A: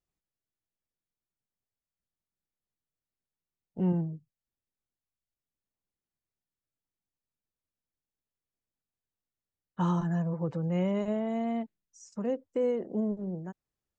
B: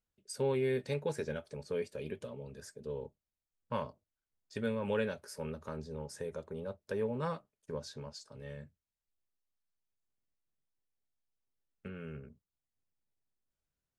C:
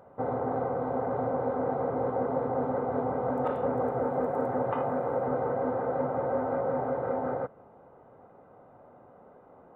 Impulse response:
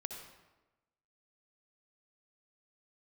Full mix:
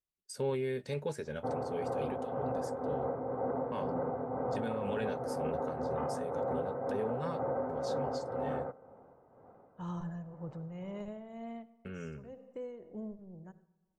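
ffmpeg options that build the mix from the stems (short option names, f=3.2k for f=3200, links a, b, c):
-filter_complex "[0:a]asubboost=boost=5.5:cutoff=93,volume=-12.5dB,asplit=2[a][b];[b]volume=-5dB[c];[1:a]agate=range=-33dB:threshold=-55dB:ratio=3:detection=peak,bandreject=f=2.4k:w=25,volume=2.5dB,asplit=2[d][e];[2:a]lowpass=f=1.8k:p=1,adelay=1250,volume=-4.5dB,asplit=2[f][g];[g]volume=-10dB[h];[e]apad=whole_len=616885[i];[a][i]sidechaincompress=threshold=-42dB:ratio=8:attack=16:release=756[j];[3:a]atrim=start_sample=2205[k];[c][h]amix=inputs=2:normalize=0[l];[l][k]afir=irnorm=-1:irlink=0[m];[j][d][f][m]amix=inputs=4:normalize=0,tremolo=f=2:d=0.49,alimiter=level_in=2dB:limit=-24dB:level=0:latency=1:release=25,volume=-2dB"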